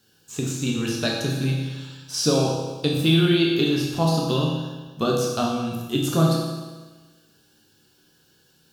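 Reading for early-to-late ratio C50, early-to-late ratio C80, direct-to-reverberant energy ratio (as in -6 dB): 1.5 dB, 3.5 dB, -2.5 dB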